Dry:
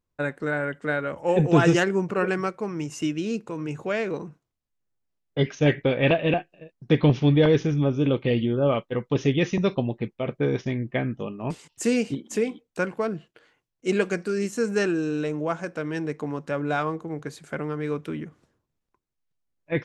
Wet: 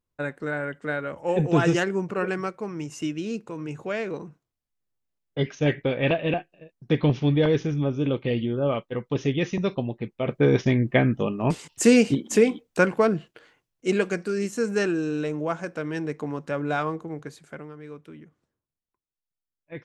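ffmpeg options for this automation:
ffmpeg -i in.wav -af "volume=6.5dB,afade=type=in:start_time=10.05:duration=0.57:silence=0.354813,afade=type=out:start_time=13.05:duration=0.96:silence=0.446684,afade=type=out:start_time=16.97:duration=0.76:silence=0.251189" out.wav

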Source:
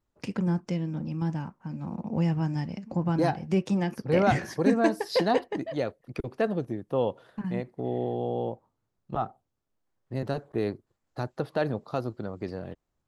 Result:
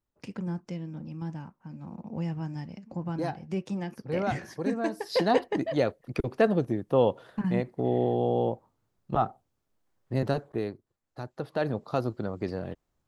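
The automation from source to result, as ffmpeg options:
ffmpeg -i in.wav -af "volume=12.5dB,afade=type=in:start_time=4.9:duration=0.75:silence=0.298538,afade=type=out:start_time=10.24:duration=0.47:silence=0.316228,afade=type=in:start_time=11.3:duration=0.71:silence=0.375837" out.wav

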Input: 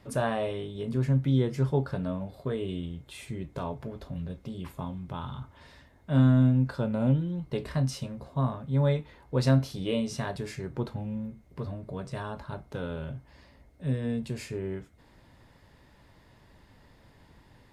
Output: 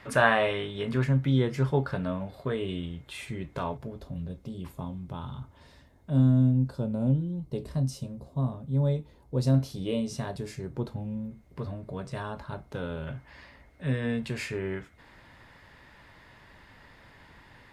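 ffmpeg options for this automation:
ffmpeg -i in.wav -af "asetnsamples=nb_out_samples=441:pad=0,asendcmd='1.04 equalizer g 6.5;3.77 equalizer g -5;6.1 equalizer g -13;9.54 equalizer g -5;11.31 equalizer g 1.5;13.07 equalizer g 10.5',equalizer=frequency=1800:width_type=o:width=2.2:gain=14.5" out.wav

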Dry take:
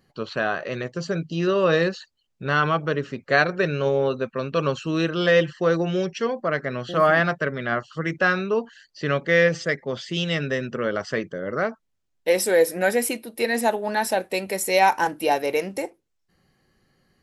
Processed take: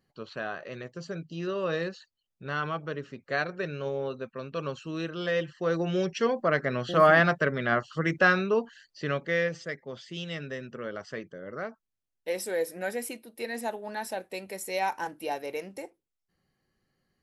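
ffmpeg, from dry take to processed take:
ffmpeg -i in.wav -af "volume=-1dB,afade=type=in:start_time=5.51:duration=0.76:silence=0.334965,afade=type=out:start_time=8.25:duration=1.3:silence=0.298538" out.wav

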